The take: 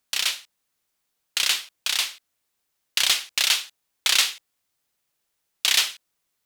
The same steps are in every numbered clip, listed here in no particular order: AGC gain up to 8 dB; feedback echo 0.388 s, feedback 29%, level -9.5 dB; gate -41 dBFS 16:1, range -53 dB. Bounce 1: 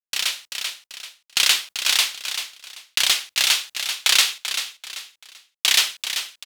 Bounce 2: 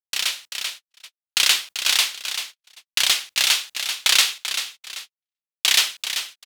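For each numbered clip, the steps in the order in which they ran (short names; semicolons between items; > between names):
gate > feedback echo > AGC; feedback echo > gate > AGC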